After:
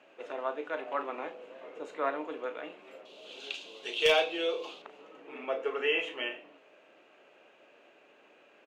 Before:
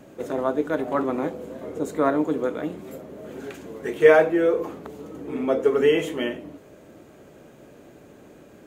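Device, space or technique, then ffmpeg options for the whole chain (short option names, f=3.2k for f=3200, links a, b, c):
megaphone: -filter_complex "[0:a]asettb=1/sr,asplit=3[a][b][c];[a]atrim=end=3.054[d];[b]atrim=start=3.05:end=4.82,asetpts=PTS-STARTPTS,afade=t=in:d=0.004:c=qsin,afade=t=out:st=1.766:d=0.004:c=qsin,highshelf=f=2.6k:t=q:w=3:g=12.5[e];[c]atrim=start=4.816[f];[d][e]acrossfade=d=0.004:c1=hsin:c2=qsin[g];[g][f]acrossfade=d=0.004:c1=qsin:c2=hsin,highpass=650,lowpass=3.6k,equalizer=f=2.7k:t=o:w=0.37:g=11.5,asoftclip=type=hard:threshold=-10.5dB,asplit=2[h][i];[i]adelay=36,volume=-11dB[j];[h][j]amix=inputs=2:normalize=0,volume=-6dB"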